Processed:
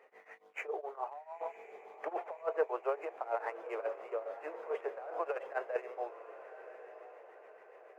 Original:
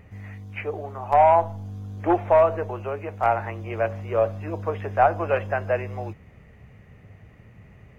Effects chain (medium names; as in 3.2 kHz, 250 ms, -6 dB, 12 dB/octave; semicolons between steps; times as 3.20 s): median filter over 9 samples; Chebyshev high-pass 430 Hz, order 4; treble shelf 2.8 kHz -11.5 dB; in parallel at -11 dB: hard clipper -16 dBFS, distortion -13 dB; on the sum: compressor with a negative ratio -24 dBFS, ratio -0.5; tremolo triangle 7 Hz, depth 95%; on a send: echo that smears into a reverb 1037 ms, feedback 50%, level -13 dB; on the sum: trim -6 dB